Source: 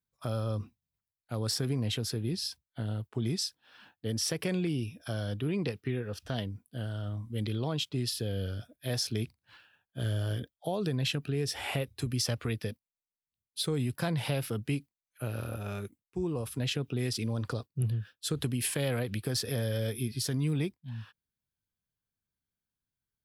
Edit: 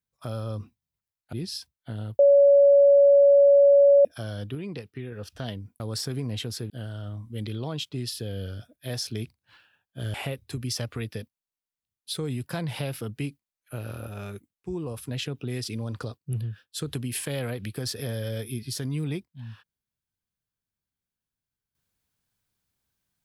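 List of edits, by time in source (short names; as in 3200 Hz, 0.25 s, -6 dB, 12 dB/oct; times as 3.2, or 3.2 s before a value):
1.33–2.23 move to 6.7
3.09–4.95 bleep 564 Hz -12.5 dBFS
5.45–6.02 gain -4 dB
10.14–11.63 cut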